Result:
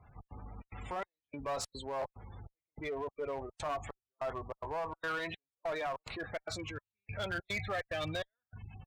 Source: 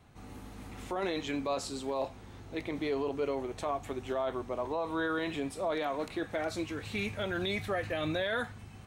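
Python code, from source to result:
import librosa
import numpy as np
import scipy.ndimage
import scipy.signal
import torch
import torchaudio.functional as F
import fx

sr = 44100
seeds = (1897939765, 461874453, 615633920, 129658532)

p1 = fx.step_gate(x, sr, bpm=146, pattern='xx.xxx.xxx...x', floor_db=-60.0, edge_ms=4.5)
p2 = fx.spec_gate(p1, sr, threshold_db=-20, keep='strong')
p3 = 10.0 ** (-35.5 / 20.0) * np.tanh(p2 / 10.0 ** (-35.5 / 20.0))
p4 = p2 + (p3 * 10.0 ** (-9.5 / 20.0))
p5 = fx.peak_eq(p4, sr, hz=290.0, db=-13.0, octaves=1.6)
p6 = fx.clip_asym(p5, sr, top_db=-35.0, bottom_db=-31.0)
y = p6 * 10.0 ** (1.5 / 20.0)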